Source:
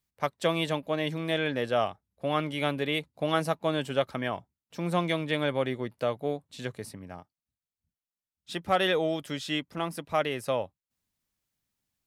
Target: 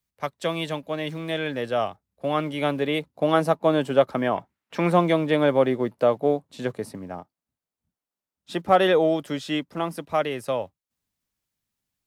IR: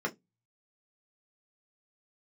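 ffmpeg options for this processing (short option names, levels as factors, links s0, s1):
-filter_complex "[0:a]asettb=1/sr,asplit=3[s0][s1][s2];[s0]atrim=end=4.364[s3];[s1]atrim=start=4.36:end=4.92,asetpts=PTS-STARTPTS,afade=t=in:d=0.004:c=qsin,afade=t=out:st=0.556:d=0.004:c=qsin,equalizer=f=2000:w=0.72:g=13.5[s4];[s2]atrim=start=4.916[s5];[s3][s4]acrossfade=d=0.004:c1=hsin:c2=qsin[s6];[s6][s5]acrossfade=d=0.004:c1=qsin:c2=hsin,acrossover=split=170|1300|3200[s7][s8][s9][s10];[s7]acrusher=bits=4:mode=log:mix=0:aa=0.000001[s11];[s8]dynaudnorm=f=330:g=17:m=3.16[s12];[s11][s12][s9][s10]amix=inputs=4:normalize=0"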